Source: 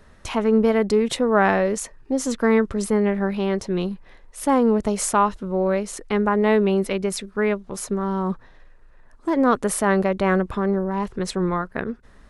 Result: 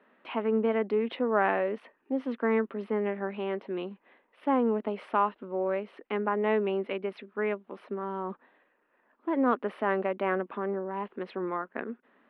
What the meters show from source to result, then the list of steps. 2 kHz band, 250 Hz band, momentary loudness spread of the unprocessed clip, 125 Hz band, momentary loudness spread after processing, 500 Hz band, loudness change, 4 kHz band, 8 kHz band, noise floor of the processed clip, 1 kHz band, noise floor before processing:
−8.0 dB, −10.5 dB, 10 LU, below −15 dB, 10 LU, −8.0 dB, −9.0 dB, −13.0 dB, below −40 dB, −71 dBFS, −7.0 dB, −50 dBFS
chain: elliptic band-pass filter 240–2,900 Hz, stop band 40 dB
level −7 dB

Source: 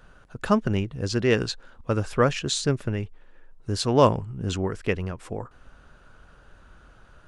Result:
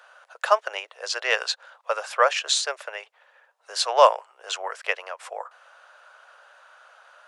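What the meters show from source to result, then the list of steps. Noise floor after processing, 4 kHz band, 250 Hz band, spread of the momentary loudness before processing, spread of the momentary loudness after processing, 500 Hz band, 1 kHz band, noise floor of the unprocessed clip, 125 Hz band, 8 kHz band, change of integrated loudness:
−62 dBFS, +5.0 dB, below −30 dB, 16 LU, 18 LU, −0.5 dB, +6.0 dB, −54 dBFS, below −40 dB, +4.0 dB, +1.5 dB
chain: Butterworth high-pass 560 Hz 48 dB per octave
high-shelf EQ 7,400 Hz −4.5 dB
level +6 dB

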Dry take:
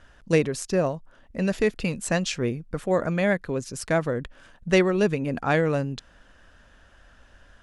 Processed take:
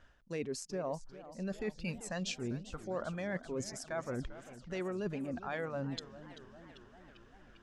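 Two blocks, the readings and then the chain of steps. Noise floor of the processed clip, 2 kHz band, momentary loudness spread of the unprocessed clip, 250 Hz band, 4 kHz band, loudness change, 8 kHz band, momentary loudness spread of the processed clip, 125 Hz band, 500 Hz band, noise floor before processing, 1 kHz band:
−61 dBFS, −15.0 dB, 10 LU, −14.0 dB, −10.5 dB, −14.5 dB, −11.0 dB, 17 LU, −14.5 dB, −15.0 dB, −55 dBFS, −13.0 dB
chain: noise reduction from a noise print of the clip's start 10 dB
parametric band 10,000 Hz −8 dB 0.53 octaves
brickwall limiter −15.5 dBFS, peak gain reduction 9 dB
reversed playback
downward compressor 6 to 1, threshold −37 dBFS, peak gain reduction 16 dB
reversed playback
feedback echo with a swinging delay time 394 ms, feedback 66%, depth 196 cents, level −15 dB
level +1 dB

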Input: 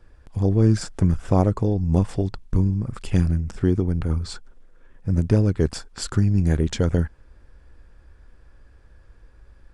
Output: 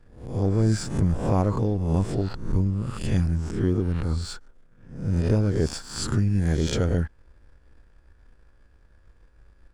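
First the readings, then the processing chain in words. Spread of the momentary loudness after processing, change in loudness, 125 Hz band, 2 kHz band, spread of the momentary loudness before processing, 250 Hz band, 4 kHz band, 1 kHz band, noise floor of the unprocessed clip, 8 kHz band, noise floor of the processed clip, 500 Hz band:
8 LU, −3.0 dB, −3.0 dB, 0.0 dB, 9 LU, −3.0 dB, +0.5 dB, −1.0 dB, −53 dBFS, +0.5 dB, −56 dBFS, −2.0 dB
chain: peak hold with a rise ahead of every peak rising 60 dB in 0.63 s
leveller curve on the samples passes 1
level −7 dB

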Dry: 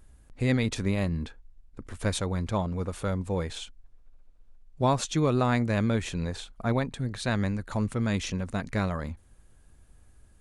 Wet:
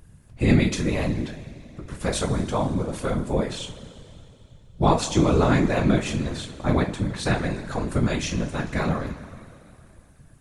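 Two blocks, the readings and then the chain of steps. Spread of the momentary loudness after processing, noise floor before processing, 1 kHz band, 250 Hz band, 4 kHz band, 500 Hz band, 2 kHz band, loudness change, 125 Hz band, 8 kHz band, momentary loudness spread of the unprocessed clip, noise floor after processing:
15 LU, −57 dBFS, +5.0 dB, +5.5 dB, +4.5 dB, +5.5 dB, +4.5 dB, +5.0 dB, +4.0 dB, +5.0 dB, 10 LU, −52 dBFS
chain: coupled-rooms reverb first 0.26 s, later 2.9 s, from −19 dB, DRR 0.5 dB
random phases in short frames
level +2 dB

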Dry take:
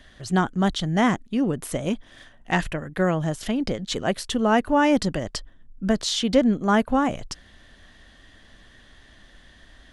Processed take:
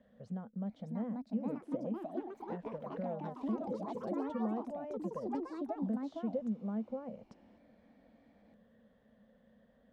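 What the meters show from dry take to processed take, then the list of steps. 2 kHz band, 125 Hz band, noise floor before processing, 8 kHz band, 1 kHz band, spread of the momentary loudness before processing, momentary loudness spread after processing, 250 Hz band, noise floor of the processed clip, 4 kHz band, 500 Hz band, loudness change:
−30.5 dB, −17.5 dB, −52 dBFS, below −35 dB, −19.0 dB, 11 LU, 6 LU, −14.0 dB, −68 dBFS, below −35 dB, −15.0 dB, −16.0 dB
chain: downward compressor 6 to 1, threshold −31 dBFS, peak gain reduction 17 dB
pair of resonant band-passes 330 Hz, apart 1.2 octaves
delay with pitch and tempo change per echo 664 ms, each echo +4 semitones, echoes 3
level +1 dB

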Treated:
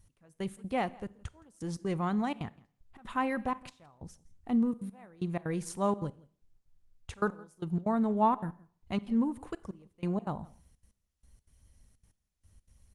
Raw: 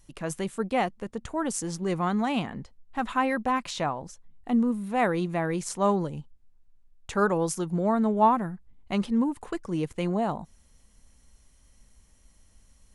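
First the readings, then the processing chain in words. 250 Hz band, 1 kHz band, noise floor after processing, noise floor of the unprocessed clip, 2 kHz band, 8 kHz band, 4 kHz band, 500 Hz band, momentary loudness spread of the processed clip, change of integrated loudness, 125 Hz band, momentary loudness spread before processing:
−5.0 dB, −7.0 dB, −81 dBFS, −60 dBFS, −8.5 dB, −13.0 dB, −10.0 dB, −8.0 dB, 20 LU, −5.5 dB, −4.5 dB, 12 LU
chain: parametric band 89 Hz +11.5 dB 1.3 octaves
gate pattern "x....xx.xxxxxx." 187 BPM −24 dB
single-tap delay 167 ms −23.5 dB
four-comb reverb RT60 0.54 s, combs from 31 ms, DRR 19 dB
level −6 dB
Opus 32 kbit/s 48,000 Hz

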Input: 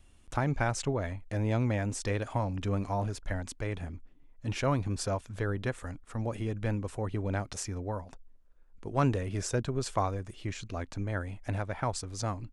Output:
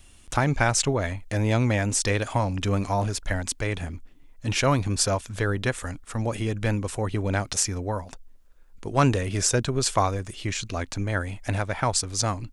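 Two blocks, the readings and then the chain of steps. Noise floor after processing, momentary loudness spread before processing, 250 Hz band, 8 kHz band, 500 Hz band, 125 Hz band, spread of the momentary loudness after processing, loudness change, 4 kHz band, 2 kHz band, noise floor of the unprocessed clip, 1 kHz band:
−51 dBFS, 9 LU, +6.0 dB, +14.5 dB, +6.5 dB, +6.0 dB, 8 LU, +7.5 dB, +13.0 dB, +10.0 dB, −57 dBFS, +7.5 dB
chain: high-shelf EQ 2,100 Hz +9 dB
level +6 dB

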